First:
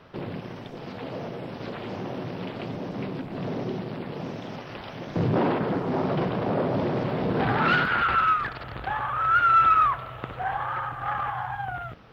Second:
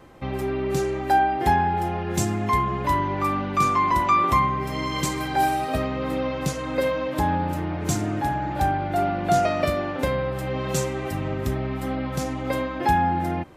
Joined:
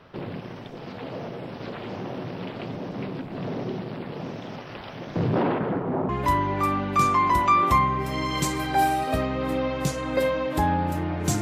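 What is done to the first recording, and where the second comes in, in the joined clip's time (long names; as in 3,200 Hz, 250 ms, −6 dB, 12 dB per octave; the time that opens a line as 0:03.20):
first
0:05.42–0:06.09: low-pass filter 4,300 Hz → 1,100 Hz
0:06.09: continue with second from 0:02.70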